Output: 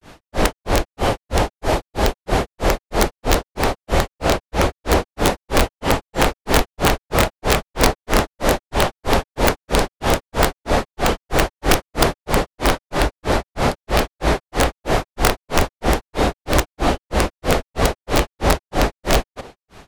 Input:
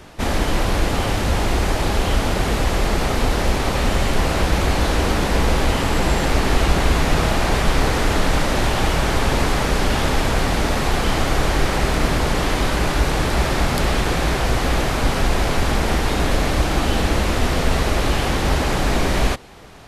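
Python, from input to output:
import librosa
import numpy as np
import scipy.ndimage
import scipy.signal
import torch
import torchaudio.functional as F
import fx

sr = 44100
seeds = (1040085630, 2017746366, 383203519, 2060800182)

y = fx.dynamic_eq(x, sr, hz=570.0, q=0.75, threshold_db=-36.0, ratio=4.0, max_db=7)
y = fx.granulator(y, sr, seeds[0], grain_ms=209.0, per_s=3.1, spray_ms=100.0, spread_st=0)
y = (np.mod(10.0 ** (7.5 / 20.0) * y + 1.0, 2.0) - 1.0) / 10.0 ** (7.5 / 20.0)
y = y * librosa.db_to_amplitude(2.5)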